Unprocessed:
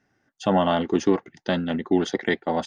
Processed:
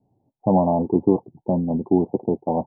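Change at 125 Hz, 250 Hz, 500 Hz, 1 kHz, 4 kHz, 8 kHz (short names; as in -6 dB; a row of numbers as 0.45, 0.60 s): +5.5 dB, +3.0 dB, +2.0 dB, +0.5 dB, under -40 dB, n/a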